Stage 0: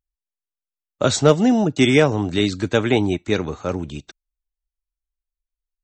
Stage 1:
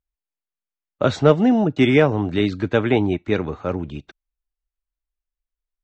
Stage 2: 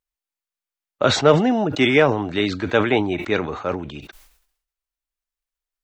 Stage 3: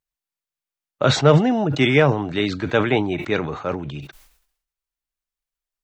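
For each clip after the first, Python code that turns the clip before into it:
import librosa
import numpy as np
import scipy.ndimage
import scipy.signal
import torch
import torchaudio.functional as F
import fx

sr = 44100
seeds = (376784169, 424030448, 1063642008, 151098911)

y1 = scipy.signal.sosfilt(scipy.signal.butter(2, 2700.0, 'lowpass', fs=sr, output='sos'), x)
y2 = fx.low_shelf(y1, sr, hz=330.0, db=-11.5)
y2 = fx.sustainer(y2, sr, db_per_s=82.0)
y2 = y2 * 10.0 ** (3.5 / 20.0)
y3 = fx.peak_eq(y2, sr, hz=140.0, db=10.0, octaves=0.39)
y3 = y3 * 10.0 ** (-1.0 / 20.0)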